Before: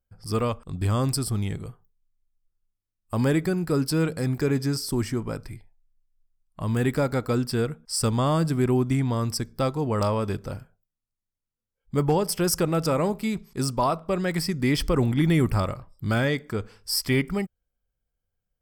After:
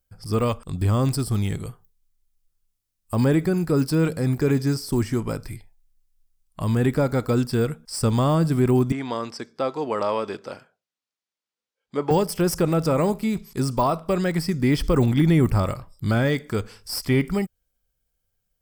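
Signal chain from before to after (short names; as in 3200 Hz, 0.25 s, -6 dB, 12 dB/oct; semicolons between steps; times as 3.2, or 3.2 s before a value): high shelf 3200 Hz +9 dB; de-esser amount 95%; 8.92–12.11 BPF 360–4700 Hz; gain +3.5 dB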